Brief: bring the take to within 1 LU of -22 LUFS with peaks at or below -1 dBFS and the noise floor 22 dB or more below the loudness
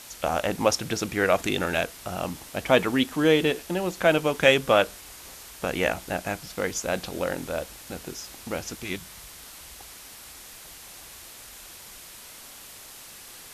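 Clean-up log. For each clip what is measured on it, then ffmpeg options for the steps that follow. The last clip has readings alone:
noise floor -45 dBFS; noise floor target -48 dBFS; loudness -25.5 LUFS; peak -3.0 dBFS; loudness target -22.0 LUFS
-> -af "afftdn=nr=6:nf=-45"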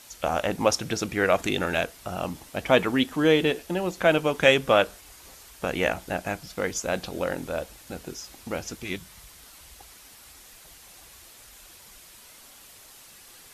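noise floor -50 dBFS; loudness -25.5 LUFS; peak -3.0 dBFS; loudness target -22.0 LUFS
-> -af "volume=3.5dB,alimiter=limit=-1dB:level=0:latency=1"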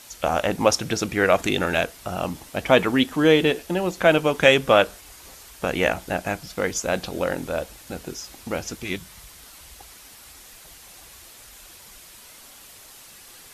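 loudness -22.0 LUFS; peak -1.0 dBFS; noise floor -47 dBFS

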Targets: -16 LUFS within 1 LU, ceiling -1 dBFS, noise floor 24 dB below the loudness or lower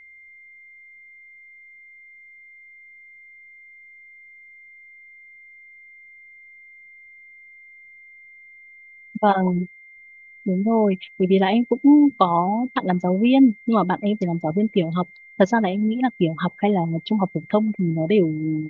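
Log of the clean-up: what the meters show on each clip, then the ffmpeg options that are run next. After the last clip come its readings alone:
steady tone 2100 Hz; tone level -44 dBFS; loudness -20.5 LUFS; peak -3.0 dBFS; loudness target -16.0 LUFS
-> -af "bandreject=f=2.1k:w=30"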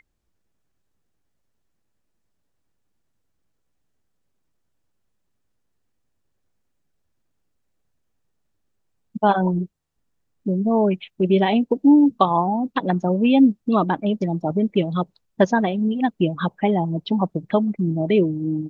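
steady tone none; loudness -20.5 LUFS; peak -3.0 dBFS; loudness target -16.0 LUFS
-> -af "volume=4.5dB,alimiter=limit=-1dB:level=0:latency=1"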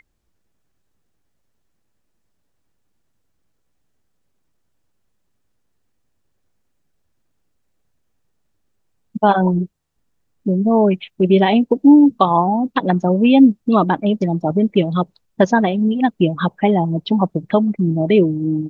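loudness -16.0 LUFS; peak -1.0 dBFS; noise floor -68 dBFS

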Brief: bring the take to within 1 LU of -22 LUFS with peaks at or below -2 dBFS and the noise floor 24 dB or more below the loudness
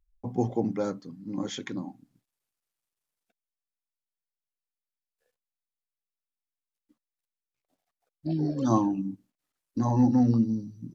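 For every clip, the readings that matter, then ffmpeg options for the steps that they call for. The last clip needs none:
loudness -27.5 LUFS; peak -11.5 dBFS; loudness target -22.0 LUFS
-> -af "volume=5.5dB"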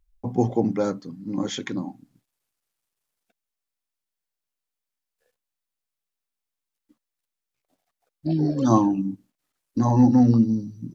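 loudness -22.5 LUFS; peak -6.0 dBFS; noise floor -86 dBFS

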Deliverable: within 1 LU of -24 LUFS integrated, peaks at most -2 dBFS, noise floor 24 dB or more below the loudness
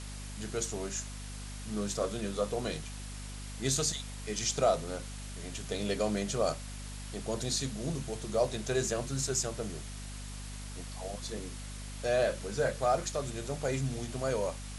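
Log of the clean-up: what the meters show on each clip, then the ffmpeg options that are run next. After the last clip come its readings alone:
hum 50 Hz; harmonics up to 250 Hz; hum level -40 dBFS; noise floor -42 dBFS; noise floor target -59 dBFS; loudness -34.5 LUFS; peak -15.0 dBFS; loudness target -24.0 LUFS
-> -af "bandreject=f=50:t=h:w=4,bandreject=f=100:t=h:w=4,bandreject=f=150:t=h:w=4,bandreject=f=200:t=h:w=4,bandreject=f=250:t=h:w=4"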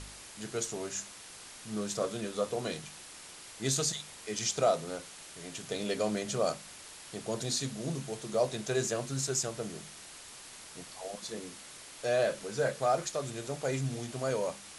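hum none; noise floor -50 dBFS; noise floor target -58 dBFS
-> -af "afftdn=nr=8:nf=-50"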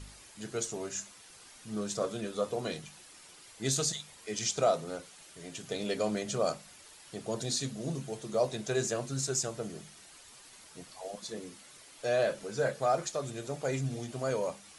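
noise floor -55 dBFS; noise floor target -58 dBFS
-> -af "afftdn=nr=6:nf=-55"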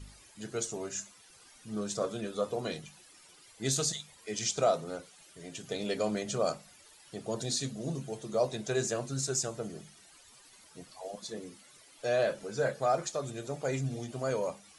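noise floor -58 dBFS; loudness -34.0 LUFS; peak -15.5 dBFS; loudness target -24.0 LUFS
-> -af "volume=10dB"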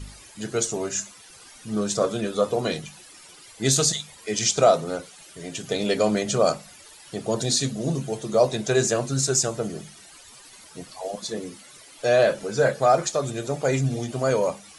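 loudness -24.0 LUFS; peak -5.5 dBFS; noise floor -48 dBFS

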